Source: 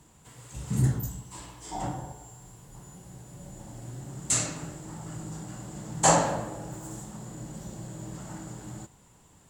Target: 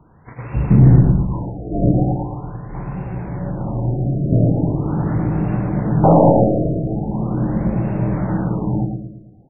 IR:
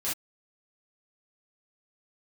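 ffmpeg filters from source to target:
-filter_complex "[0:a]agate=range=-12dB:threshold=-49dB:ratio=16:detection=peak,acrossover=split=660[a][b];[b]acompressor=threshold=-51dB:ratio=6[c];[a][c]amix=inputs=2:normalize=0,aeval=exprs='0.211*(cos(1*acos(clip(val(0)/0.211,-1,1)))-cos(1*PI/2))+0.0075*(cos(8*acos(clip(val(0)/0.211,-1,1)))-cos(8*PI/2))':c=same,asplit=2[d][e];[e]adelay=111,lowpass=f=2k:p=1,volume=-5dB,asplit=2[f][g];[g]adelay=111,lowpass=f=2k:p=1,volume=0.5,asplit=2[h][i];[i]adelay=111,lowpass=f=2k:p=1,volume=0.5,asplit=2[j][k];[k]adelay=111,lowpass=f=2k:p=1,volume=0.5,asplit=2[l][m];[m]adelay=111,lowpass=f=2k:p=1,volume=0.5,asplit=2[n][o];[o]adelay=111,lowpass=f=2k:p=1,volume=0.5[p];[f][h][j][l][n][p]amix=inputs=6:normalize=0[q];[d][q]amix=inputs=2:normalize=0,alimiter=level_in=21dB:limit=-1dB:release=50:level=0:latency=1,afftfilt=real='re*lt(b*sr/1024,710*pow(2800/710,0.5+0.5*sin(2*PI*0.41*pts/sr)))':imag='im*lt(b*sr/1024,710*pow(2800/710,0.5+0.5*sin(2*PI*0.41*pts/sr)))':win_size=1024:overlap=0.75,volume=-1dB"

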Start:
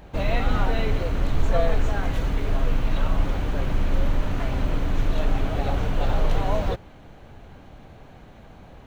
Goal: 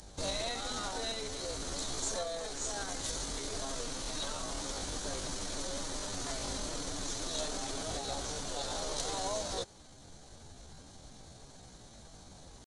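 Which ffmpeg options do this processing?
-filter_complex "[0:a]acrossover=split=250|310|2100[a][b][c][d];[a]acompressor=threshold=-31dB:ratio=16[e];[e][b][c][d]amix=inputs=4:normalize=0,alimiter=limit=-19.5dB:level=0:latency=1:release=485,aexciter=amount=14.1:drive=3.5:freq=4k,atempo=0.7,aresample=22050,aresample=44100,volume=-8dB"

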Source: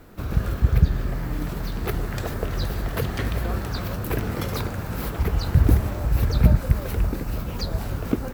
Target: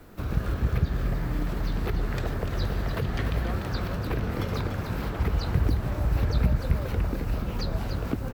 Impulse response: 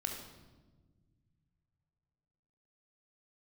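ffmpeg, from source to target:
-filter_complex "[0:a]acrossover=split=190|5200[a][b][c];[a]acompressor=threshold=-20dB:ratio=4[d];[b]acompressor=threshold=-29dB:ratio=4[e];[c]acompressor=threshold=-53dB:ratio=4[f];[d][e][f]amix=inputs=3:normalize=0,asplit=2[g][h];[h]aecho=0:1:294:0.398[i];[g][i]amix=inputs=2:normalize=0,volume=-1.5dB"

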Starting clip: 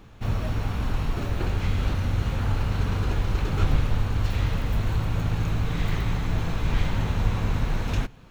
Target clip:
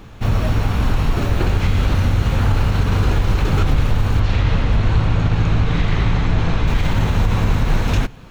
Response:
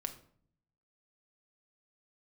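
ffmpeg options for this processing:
-filter_complex "[0:a]asplit=3[a][b][c];[a]afade=t=out:st=4.19:d=0.02[d];[b]lowpass=5.2k,afade=t=in:st=4.19:d=0.02,afade=t=out:st=6.66:d=0.02[e];[c]afade=t=in:st=6.66:d=0.02[f];[d][e][f]amix=inputs=3:normalize=0,alimiter=level_in=15.5dB:limit=-1dB:release=50:level=0:latency=1,volume=-6dB"

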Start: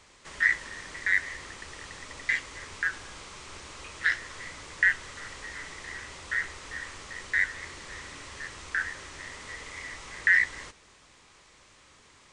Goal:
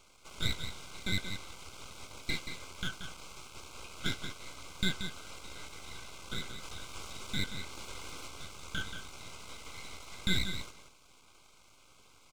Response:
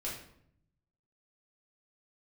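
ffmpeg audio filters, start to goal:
-filter_complex "[0:a]aeval=exprs='max(val(0),0)':c=same,asplit=3[a][b][c];[a]afade=t=out:st=6.62:d=0.02[d];[b]acompressor=mode=upward:threshold=-34dB:ratio=2.5,afade=t=in:st=6.62:d=0.02,afade=t=out:st=8.26:d=0.02[e];[c]afade=t=in:st=8.26:d=0.02[f];[d][e][f]amix=inputs=3:normalize=0,asuperstop=centerf=1800:order=12:qfactor=3.8,aecho=1:1:180:0.376,volume=-1dB"

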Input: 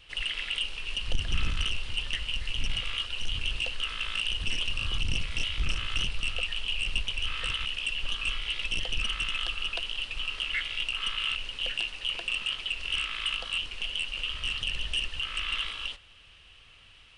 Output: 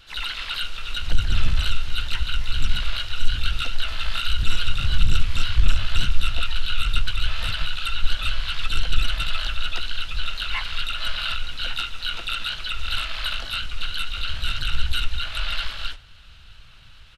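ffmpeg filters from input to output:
-filter_complex "[0:a]asubboost=boost=2.5:cutoff=210,asplit=4[a][b][c][d];[b]asetrate=22050,aresample=44100,atempo=2,volume=-4dB[e];[c]asetrate=33038,aresample=44100,atempo=1.33484,volume=-17dB[f];[d]asetrate=58866,aresample=44100,atempo=0.749154,volume=-2dB[g];[a][e][f][g]amix=inputs=4:normalize=0"

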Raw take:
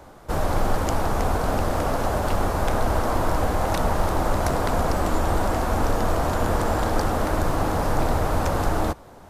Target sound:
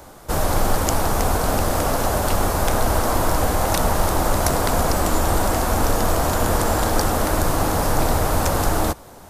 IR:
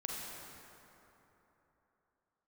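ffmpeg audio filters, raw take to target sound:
-af "highshelf=f=4.9k:g=12,volume=2.5dB"

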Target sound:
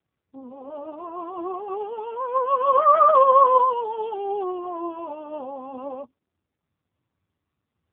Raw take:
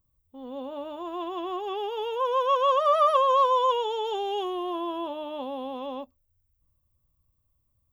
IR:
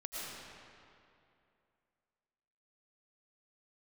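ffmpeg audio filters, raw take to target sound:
-filter_complex "[0:a]lowpass=f=2.3k:w=0.5412,lowpass=f=2.3k:w=1.3066,asplit=3[a][b][c];[a]afade=t=out:st=2.74:d=0.02[d];[b]acontrast=23,afade=t=in:st=2.74:d=0.02,afade=t=out:st=3.63:d=0.02[e];[c]afade=t=in:st=3.63:d=0.02[f];[d][e][f]amix=inputs=3:normalize=0,flanger=delay=5.1:depth=8.1:regen=40:speed=0.46:shape=sinusoidal,volume=6dB" -ar 8000 -c:a libopencore_amrnb -b:a 5900

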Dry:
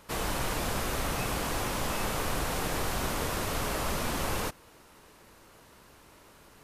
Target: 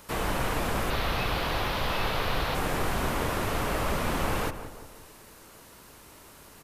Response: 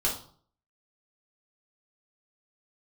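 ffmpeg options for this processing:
-filter_complex "[0:a]highshelf=f=6.4k:g=8,acrossover=split=3300[a][b];[b]acompressor=threshold=-45dB:ratio=4:attack=1:release=60[c];[a][c]amix=inputs=2:normalize=0,asettb=1/sr,asplit=3[d][e][f];[d]atrim=end=0.904[g];[e]atrim=start=0.9:end=2.55,asetpts=PTS-STARTPTS,afade=t=in:d=0.004:c=qsin,afade=t=out:st=1.646:d=0.004:c=qsin,equalizer=f=250:t=o:w=1:g=-5,equalizer=f=4k:t=o:w=1:g=9,equalizer=f=8k:t=o:w=1:g=-10[h];[f]atrim=start=2.546[i];[g][h]acrossfade=d=0.004:c1=hsin:c2=qsin[j];[j][i]acrossfade=d=0.004:c1=qsin:c2=hsin,asplit=2[k][l];[l]adelay=176,lowpass=f=1.6k:p=1,volume=-10dB,asplit=2[m][n];[n]adelay=176,lowpass=f=1.6k:p=1,volume=0.5,asplit=2[o][p];[p]adelay=176,lowpass=f=1.6k:p=1,volume=0.5,asplit=2[q][r];[r]adelay=176,lowpass=f=1.6k:p=1,volume=0.5,asplit=2[s][t];[t]adelay=176,lowpass=f=1.6k:p=1,volume=0.5[u];[k][m][o][q][s][u]amix=inputs=6:normalize=0,volume=3dB"

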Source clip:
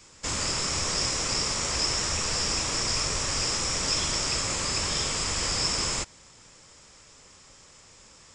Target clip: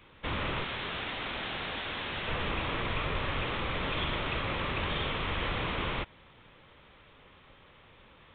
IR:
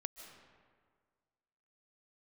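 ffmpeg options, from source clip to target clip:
-filter_complex "[0:a]asettb=1/sr,asplit=3[a][b][c];[a]atrim=end=0.644[d];[b]atrim=start=0.64:end=2.28,asetpts=PTS-STARTPTS,afade=t=in:d=0.004:c=qsin,afade=t=out:st=1.636:d=0.004:c=qsin,aeval=exprs='(mod(17.8*val(0)+1,2)-1)/17.8':c=same[e];[c]atrim=start=2.276[f];[d][e]acrossfade=d=0.004:c1=hsin:c2=qsin[g];[g][f]acrossfade=d=0.004:c1=qsin:c2=hsin,aresample=8000,aresample=44100"

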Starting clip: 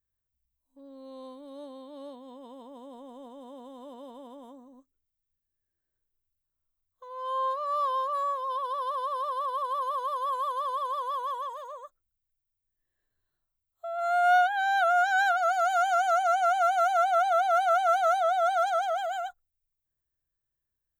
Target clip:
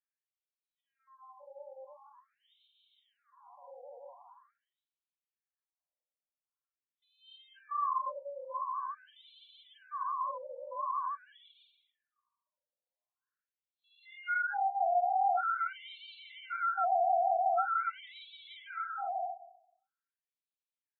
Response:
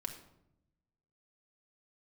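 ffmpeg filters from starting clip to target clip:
-filter_complex "[0:a]bandreject=f=334.8:t=h:w=4,bandreject=f=669.6:t=h:w=4,asettb=1/sr,asplit=3[a][b][c];[a]atrim=end=8.454[d];[b]atrim=start=8.45:end=8.95,asetpts=PTS-STARTPTS,afade=t=in:d=0.004:c=qsin,afade=t=out:st=0.496:d=0.004:c=qsin,tremolo=f=76:d=0.333[e];[c]atrim=start=8.946[f];[d][e]acrossfade=d=0.004:c1=hsin:c2=qsin[g];[g][f]acrossfade=d=0.004:c1=qsin:c2=hsin,asplit=2[h][i];[1:a]atrim=start_sample=2205,adelay=49[j];[i][j]afir=irnorm=-1:irlink=0,volume=-0.5dB[k];[h][k]amix=inputs=2:normalize=0,afftfilt=real='re*between(b*sr/1024,640*pow(3200/640,0.5+0.5*sin(2*PI*0.45*pts/sr))/1.41,640*pow(3200/640,0.5+0.5*sin(2*PI*0.45*pts/sr))*1.41)':imag='im*between(b*sr/1024,640*pow(3200/640,0.5+0.5*sin(2*PI*0.45*pts/sr))/1.41,640*pow(3200/640,0.5+0.5*sin(2*PI*0.45*pts/sr))*1.41)':win_size=1024:overlap=0.75,volume=-5.5dB"

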